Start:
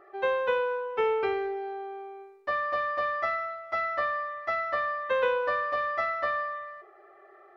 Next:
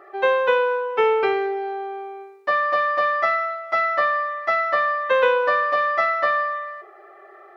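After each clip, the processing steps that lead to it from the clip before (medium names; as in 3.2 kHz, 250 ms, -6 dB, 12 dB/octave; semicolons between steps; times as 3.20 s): high-pass 290 Hz 6 dB/octave; trim +9 dB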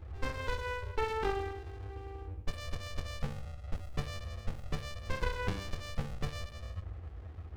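band noise 52–100 Hz -35 dBFS; sliding maximum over 65 samples; trim -8.5 dB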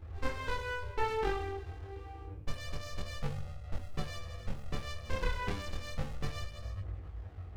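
chorus voices 2, 0.29 Hz, delay 23 ms, depth 4.2 ms; trim +3 dB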